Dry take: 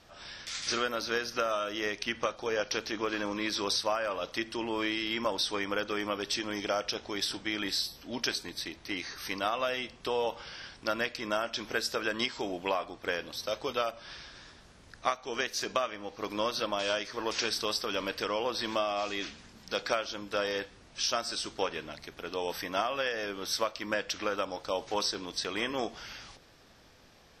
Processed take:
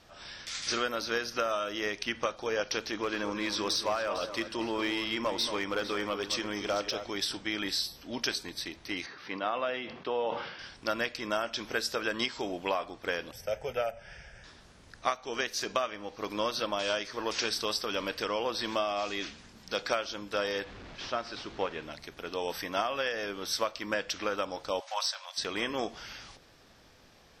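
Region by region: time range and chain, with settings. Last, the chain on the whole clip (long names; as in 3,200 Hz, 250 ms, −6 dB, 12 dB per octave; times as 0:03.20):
0:02.92–0:07.10: low-pass filter 12,000 Hz + hard clipping −22.5 dBFS + delay that swaps between a low-pass and a high-pass 227 ms, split 1,500 Hz, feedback 60%, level −9 dB
0:09.06–0:10.59: high-pass filter 160 Hz + high-frequency loss of the air 270 metres + level that may fall only so fast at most 57 dB per second
0:13.31–0:14.44: low-shelf EQ 400 Hz +6.5 dB + phaser with its sweep stopped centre 1,100 Hz, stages 6
0:20.64–0:21.83: linear delta modulator 64 kbit/s, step −39 dBFS + high-frequency loss of the air 200 metres
0:24.80–0:25.38: linear-phase brick-wall high-pass 530 Hz + hard clipping −20 dBFS
whole clip: no processing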